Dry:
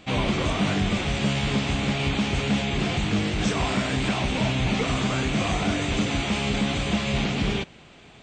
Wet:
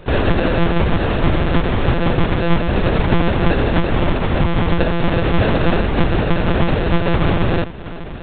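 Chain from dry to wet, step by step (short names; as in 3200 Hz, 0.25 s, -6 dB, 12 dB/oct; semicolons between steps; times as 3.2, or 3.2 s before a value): bell 2700 Hz -10.5 dB 0.47 oct; in parallel at -3 dB: limiter -20.5 dBFS, peak gain reduction 6.5 dB; 3.71–4.83 on the sum: brick-wall FIR band-stop 530–1200 Hz; on a send: multi-head echo 0.358 s, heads second and third, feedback 70%, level -20 dB; on the sum: sample-and-hold 41×; HPF 130 Hz 12 dB/oct; monotone LPC vocoder at 8 kHz 170 Hz; gain +8.5 dB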